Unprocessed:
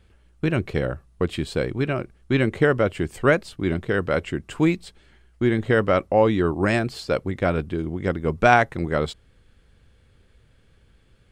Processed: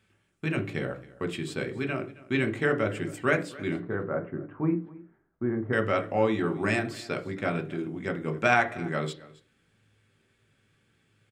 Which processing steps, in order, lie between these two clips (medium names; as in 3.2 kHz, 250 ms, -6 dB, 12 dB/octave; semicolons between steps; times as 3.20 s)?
3.76–5.73 s: low-pass 1.3 kHz 24 dB/octave; delay 269 ms -20.5 dB; reverberation RT60 0.40 s, pre-delay 3 ms, DRR 6 dB; trim -5 dB